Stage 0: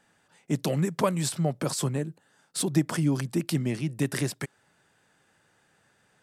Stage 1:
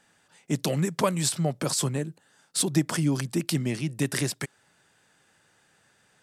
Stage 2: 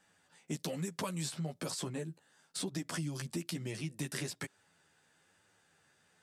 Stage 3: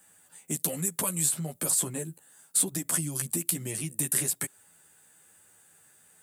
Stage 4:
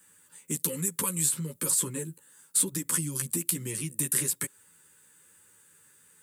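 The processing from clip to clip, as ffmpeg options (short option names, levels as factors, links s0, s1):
-af "equalizer=f=6200:t=o:w=2.9:g=5"
-filter_complex "[0:a]flanger=delay=10:depth=3.5:regen=2:speed=1.1:shape=triangular,acrossover=split=3000|7000[s0][s1][s2];[s0]acompressor=threshold=0.0224:ratio=4[s3];[s1]acompressor=threshold=0.00891:ratio=4[s4];[s2]acompressor=threshold=0.00562:ratio=4[s5];[s3][s4][s5]amix=inputs=3:normalize=0,volume=0.708"
-af "aexciter=amount=8.7:drive=4.9:freq=7500,volume=1.5"
-af "asuperstop=centerf=700:order=12:qfactor=2.4"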